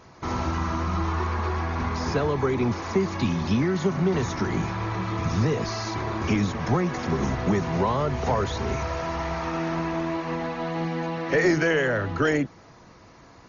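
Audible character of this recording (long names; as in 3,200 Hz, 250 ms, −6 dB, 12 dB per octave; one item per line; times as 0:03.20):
AC-3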